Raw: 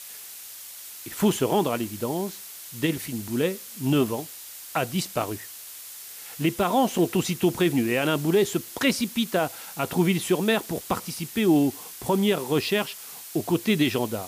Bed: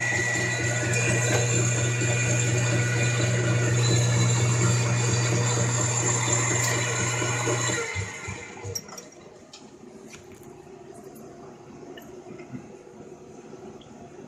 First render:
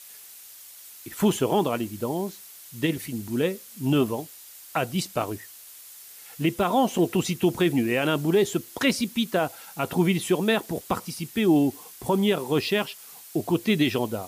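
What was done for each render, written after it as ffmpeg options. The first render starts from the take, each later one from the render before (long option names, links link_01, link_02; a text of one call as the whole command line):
ffmpeg -i in.wav -af "afftdn=noise_reduction=6:noise_floor=-41" out.wav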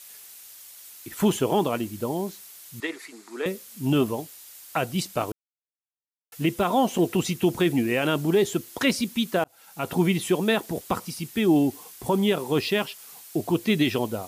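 ffmpeg -i in.wav -filter_complex "[0:a]asettb=1/sr,asplit=3[link_01][link_02][link_03];[link_01]atrim=end=2.804[link_04];[link_02]atrim=start=2.8:end=3.46,asetpts=PTS-STARTPTS,afade=type=in:duration=0.004:curve=qsin,afade=type=out:start_time=0.656:duration=0.004:curve=qsin,highpass=frequency=390:width=0.5412,highpass=frequency=390:width=1.3066,equalizer=frequency=550:width_type=q:width=4:gain=-9,equalizer=frequency=1200:width_type=q:width=4:gain=7,equalizer=frequency=2000:width_type=q:width=4:gain=3,equalizer=frequency=3000:width_type=q:width=4:gain=-9,equalizer=frequency=5900:width_type=q:width=4:gain=-5,equalizer=frequency=9300:width_type=q:width=4:gain=-9,lowpass=frequency=9700:width=0.5412,lowpass=frequency=9700:width=1.3066[link_05];[link_03]atrim=start=3.456[link_06];[link_04][link_05]acrossfade=duration=0.004:curve1=hsin:curve2=qsin[link_07];[link_07][link_06]acrossfade=duration=0.004:curve1=qsin:curve2=hsin,asplit=4[link_08][link_09][link_10][link_11];[link_08]atrim=end=5.32,asetpts=PTS-STARTPTS,afade=type=out:start_time=5.316:duration=0.004:curve=hsin[link_12];[link_09]atrim=start=5.32:end=6.32,asetpts=PTS-STARTPTS,volume=0[link_13];[link_10]atrim=start=6.32:end=9.44,asetpts=PTS-STARTPTS,afade=type=in:duration=0.004:curve=hsin,afade=type=out:start_time=3.116:duration=0.004:curve=hsin[link_14];[link_11]atrim=start=9.44,asetpts=PTS-STARTPTS,afade=type=in:duration=0.49[link_15];[link_12][link_13][link_14][link_15]concat=n=4:v=0:a=1" out.wav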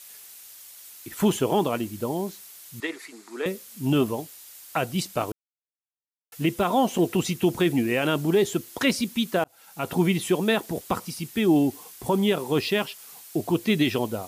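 ffmpeg -i in.wav -af anull out.wav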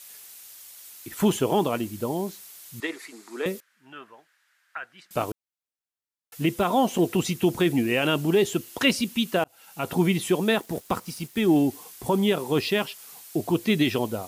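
ffmpeg -i in.wav -filter_complex "[0:a]asettb=1/sr,asplit=3[link_01][link_02][link_03];[link_01]atrim=end=3.604[link_04];[link_02]atrim=start=3.6:end=5.11,asetpts=PTS-STARTPTS,afade=type=in:duration=0.004:curve=qsin,afade=type=out:start_time=1.506:duration=0.004:curve=qsin,bandpass=frequency=1600:width_type=q:width=4.6[link_05];[link_03]atrim=start=5.106[link_06];[link_04][link_05]acrossfade=duration=0.004:curve1=hsin:curve2=qsin[link_07];[link_07][link_06]acrossfade=duration=0.004:curve1=qsin:curve2=hsin,asettb=1/sr,asplit=3[link_08][link_09][link_10];[link_08]atrim=end=7.864[link_11];[link_09]atrim=start=7.86:end=9.81,asetpts=PTS-STARTPTS,afade=type=in:duration=0.004:curve=qsin,afade=type=out:start_time=1.946:duration=0.004:curve=qsin,equalizer=frequency=2800:width=7.4:gain=6.5[link_12];[link_10]atrim=start=9.806[link_13];[link_11][link_12]acrossfade=duration=0.004:curve1=hsin:curve2=qsin[link_14];[link_14][link_13]acrossfade=duration=0.004:curve1=qsin:curve2=hsin,asettb=1/sr,asplit=3[link_15][link_16][link_17];[link_15]atrim=end=10.574[link_18];[link_16]atrim=start=10.57:end=11.62,asetpts=PTS-STARTPTS,afade=type=in:duration=0.004:curve=qsin,afade=type=out:start_time=1.046:duration=0.004:curve=qsin,aeval=exprs='sgn(val(0))*max(abs(val(0))-0.00376,0)':channel_layout=same[link_19];[link_17]atrim=start=11.616[link_20];[link_18][link_19]acrossfade=duration=0.004:curve1=hsin:curve2=qsin[link_21];[link_21][link_20]acrossfade=duration=0.004:curve1=qsin:curve2=hsin" out.wav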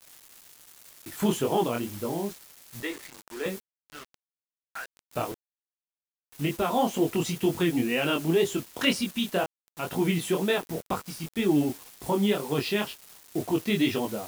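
ffmpeg -i in.wav -af "flanger=delay=20:depth=5:speed=2,acrusher=bits=6:mix=0:aa=0.000001" out.wav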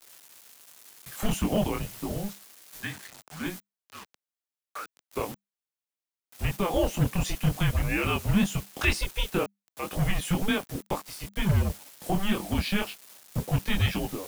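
ffmpeg -i in.wav -filter_complex "[0:a]acrossover=split=320[link_01][link_02];[link_01]acrusher=bits=4:mix=0:aa=0.5[link_03];[link_03][link_02]amix=inputs=2:normalize=0,afreqshift=-200" out.wav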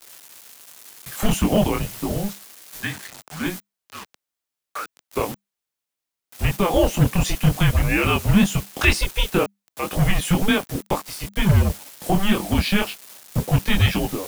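ffmpeg -i in.wav -af "volume=7.5dB" out.wav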